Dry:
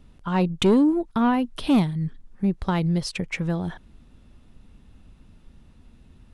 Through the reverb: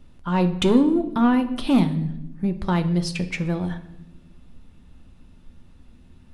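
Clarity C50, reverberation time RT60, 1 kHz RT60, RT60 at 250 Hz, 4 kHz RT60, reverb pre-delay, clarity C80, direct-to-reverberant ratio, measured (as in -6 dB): 12.5 dB, 0.90 s, 0.75 s, 1.5 s, 0.70 s, 3 ms, 15.5 dB, 6.5 dB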